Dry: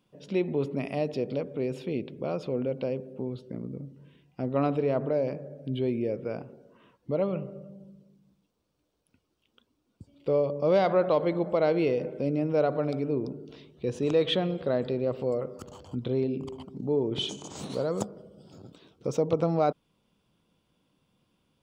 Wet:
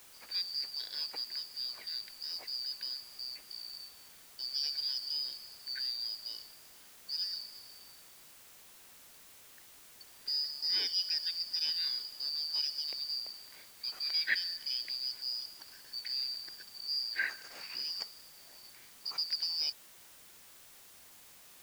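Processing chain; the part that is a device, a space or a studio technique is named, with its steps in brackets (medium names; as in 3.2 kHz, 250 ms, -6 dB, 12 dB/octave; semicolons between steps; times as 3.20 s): split-band scrambled radio (four frequency bands reordered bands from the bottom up 4321; band-pass 310–2900 Hz; white noise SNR 17 dB)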